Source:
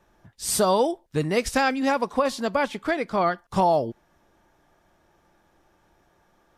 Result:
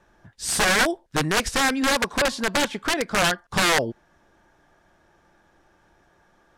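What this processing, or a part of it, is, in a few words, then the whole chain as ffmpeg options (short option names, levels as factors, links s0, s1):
overflowing digital effects unit: -af "aeval=exprs='(mod(6.68*val(0)+1,2)-1)/6.68':c=same,lowpass=10000,equalizer=f=1600:w=4.3:g=5,volume=1.26"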